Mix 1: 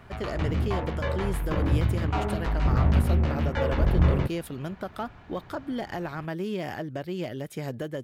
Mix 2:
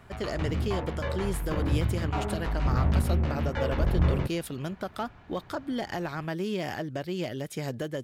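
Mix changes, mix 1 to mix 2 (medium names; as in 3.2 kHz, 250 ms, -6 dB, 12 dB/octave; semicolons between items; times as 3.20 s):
speech: add peaking EQ 5.9 kHz +5.5 dB 1.9 oct; background -3.0 dB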